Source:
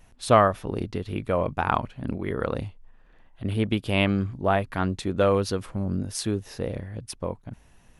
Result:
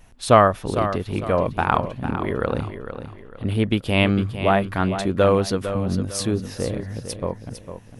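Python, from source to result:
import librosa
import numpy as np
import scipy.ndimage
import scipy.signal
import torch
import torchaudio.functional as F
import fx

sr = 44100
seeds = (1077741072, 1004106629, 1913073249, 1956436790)

p1 = x + fx.echo_feedback(x, sr, ms=453, feedback_pct=34, wet_db=-10.0, dry=0)
y = p1 * librosa.db_to_amplitude(4.0)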